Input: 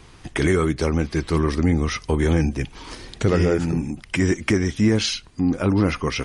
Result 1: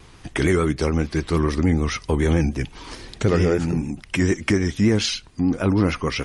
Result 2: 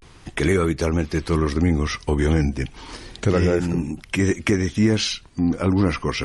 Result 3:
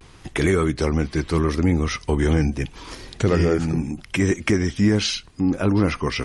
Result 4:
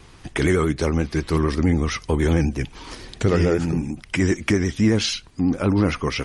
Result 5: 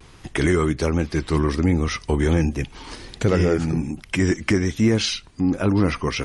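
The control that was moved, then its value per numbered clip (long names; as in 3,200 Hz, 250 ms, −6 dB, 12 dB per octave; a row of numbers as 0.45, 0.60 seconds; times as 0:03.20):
pitch vibrato, speed: 6.8, 0.31, 0.77, 11, 1.3 Hertz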